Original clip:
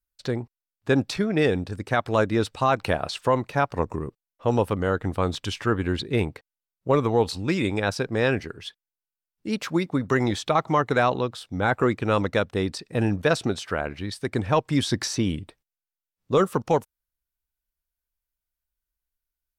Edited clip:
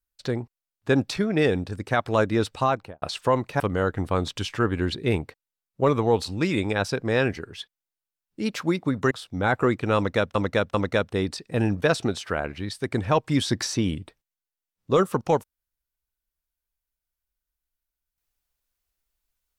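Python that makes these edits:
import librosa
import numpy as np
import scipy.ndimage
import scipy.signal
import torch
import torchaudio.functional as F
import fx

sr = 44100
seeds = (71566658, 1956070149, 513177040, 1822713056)

y = fx.studio_fade_out(x, sr, start_s=2.6, length_s=0.42)
y = fx.edit(y, sr, fx.cut(start_s=3.6, length_s=1.07),
    fx.cut(start_s=10.18, length_s=1.12),
    fx.repeat(start_s=12.15, length_s=0.39, count=3), tone=tone)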